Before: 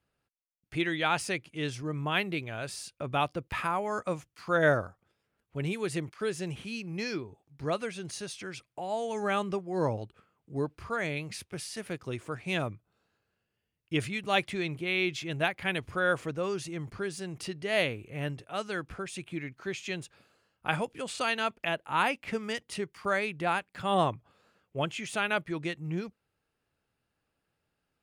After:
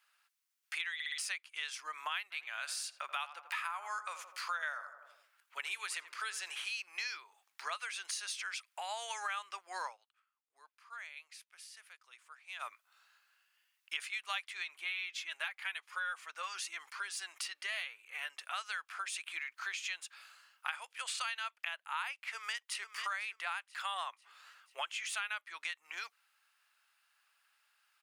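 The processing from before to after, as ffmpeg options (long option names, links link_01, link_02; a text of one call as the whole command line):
ffmpeg -i in.wav -filter_complex "[0:a]asplit=3[link_01][link_02][link_03];[link_01]afade=type=out:start_time=2.3:duration=0.02[link_04];[link_02]asplit=2[link_05][link_06];[link_06]adelay=83,lowpass=frequency=1400:poles=1,volume=-12dB,asplit=2[link_07][link_08];[link_08]adelay=83,lowpass=frequency=1400:poles=1,volume=0.53,asplit=2[link_09][link_10];[link_10]adelay=83,lowpass=frequency=1400:poles=1,volume=0.53,asplit=2[link_11][link_12];[link_12]adelay=83,lowpass=frequency=1400:poles=1,volume=0.53,asplit=2[link_13][link_14];[link_14]adelay=83,lowpass=frequency=1400:poles=1,volume=0.53,asplit=2[link_15][link_16];[link_16]adelay=83,lowpass=frequency=1400:poles=1,volume=0.53[link_17];[link_05][link_07][link_09][link_11][link_13][link_15][link_17]amix=inputs=7:normalize=0,afade=type=in:start_time=2.3:duration=0.02,afade=type=out:start_time=6.71:duration=0.02[link_18];[link_03]afade=type=in:start_time=6.71:duration=0.02[link_19];[link_04][link_18][link_19]amix=inputs=3:normalize=0,asplit=3[link_20][link_21][link_22];[link_20]afade=type=out:start_time=14.63:duration=0.02[link_23];[link_21]flanger=delay=1.9:depth=1.9:regen=-40:speed=1:shape=triangular,afade=type=in:start_time=14.63:duration=0.02,afade=type=out:start_time=18.36:duration=0.02[link_24];[link_22]afade=type=in:start_time=18.36:duration=0.02[link_25];[link_23][link_24][link_25]amix=inputs=3:normalize=0,asplit=2[link_26][link_27];[link_27]afade=type=in:start_time=22.28:duration=0.01,afade=type=out:start_time=22.93:duration=0.01,aecho=0:1:490|980|1470|1960:0.237137|0.0829981|0.0290493|0.0101673[link_28];[link_26][link_28]amix=inputs=2:normalize=0,asplit=7[link_29][link_30][link_31][link_32][link_33][link_34][link_35];[link_29]atrim=end=1.002[link_36];[link_30]atrim=start=0.938:end=1.002[link_37];[link_31]atrim=start=0.938:end=1.002[link_38];[link_32]atrim=start=0.938:end=1.002[link_39];[link_33]atrim=start=1.178:end=9.98,asetpts=PTS-STARTPTS,afade=type=out:start_time=8.682:duration=0.12:silence=0.0707946[link_40];[link_34]atrim=start=9.98:end=12.59,asetpts=PTS-STARTPTS,volume=-23dB[link_41];[link_35]atrim=start=12.59,asetpts=PTS-STARTPTS,afade=type=in:duration=0.12:silence=0.0707946[link_42];[link_36][link_37]acrossfade=duration=0.004:curve1=hsin:curve2=hsin[link_43];[link_43][link_38]acrossfade=duration=0.004:curve1=hsin:curve2=hsin[link_44];[link_44][link_39]acrossfade=duration=0.004:curve1=hsin:curve2=hsin[link_45];[link_40][link_41][link_42]concat=n=3:v=0:a=1[link_46];[link_45][link_46]acrossfade=duration=0.004:curve1=hsin:curve2=hsin,highpass=frequency=1100:width=0.5412,highpass=frequency=1100:width=1.3066,acompressor=threshold=-49dB:ratio=5,volume=11dB" out.wav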